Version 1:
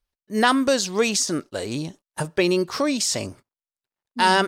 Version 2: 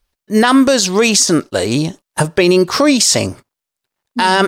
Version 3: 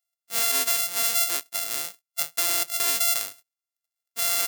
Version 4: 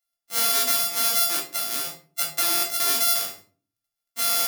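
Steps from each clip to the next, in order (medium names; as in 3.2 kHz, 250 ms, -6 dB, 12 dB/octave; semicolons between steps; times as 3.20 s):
loudness maximiser +13.5 dB; trim -1 dB
sorted samples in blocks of 64 samples; differentiator; trim -5 dB
simulated room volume 280 m³, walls furnished, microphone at 2.5 m; trim -1.5 dB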